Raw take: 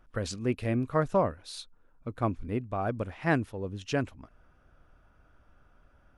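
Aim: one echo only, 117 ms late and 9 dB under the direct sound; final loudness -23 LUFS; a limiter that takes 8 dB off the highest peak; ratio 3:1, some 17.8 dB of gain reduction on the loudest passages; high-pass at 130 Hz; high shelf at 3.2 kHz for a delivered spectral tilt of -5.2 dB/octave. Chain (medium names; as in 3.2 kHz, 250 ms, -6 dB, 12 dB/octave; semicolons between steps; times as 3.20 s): high-pass 130 Hz; treble shelf 3.2 kHz -4.5 dB; compression 3:1, threshold -46 dBFS; peak limiter -35.5 dBFS; delay 117 ms -9 dB; trim +25.5 dB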